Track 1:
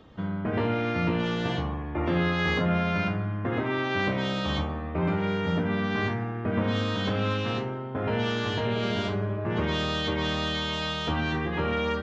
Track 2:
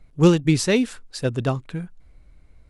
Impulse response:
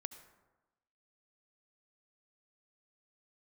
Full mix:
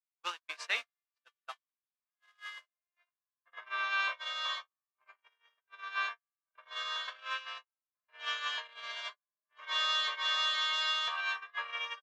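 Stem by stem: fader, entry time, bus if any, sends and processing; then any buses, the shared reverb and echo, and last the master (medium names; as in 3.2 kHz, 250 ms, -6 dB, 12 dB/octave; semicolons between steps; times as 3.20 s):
-2.0 dB, 0.00 s, no send, echo send -16 dB, comb 1.8 ms, depth 78%; auto duck -8 dB, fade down 1.35 s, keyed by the second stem
-4.5 dB, 0.00 s, no send, no echo send, word length cut 6-bit, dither triangular; low-pass 4.1 kHz 12 dB/octave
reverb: none
echo: feedback delay 66 ms, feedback 49%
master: high-pass 1 kHz 24 dB/octave; gate -33 dBFS, range -60 dB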